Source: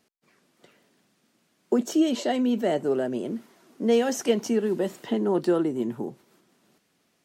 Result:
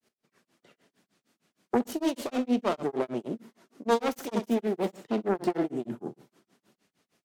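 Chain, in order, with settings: self-modulated delay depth 0.54 ms; flutter echo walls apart 11.1 m, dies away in 0.38 s; granulator 154 ms, grains 6.5 per s, spray 16 ms, pitch spread up and down by 0 st

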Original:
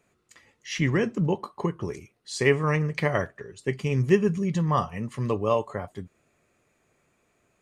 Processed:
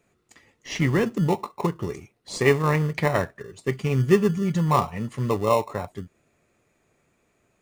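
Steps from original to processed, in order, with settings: dynamic bell 920 Hz, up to +7 dB, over -43 dBFS, Q 2.4; in parallel at -10 dB: sample-and-hold 28×

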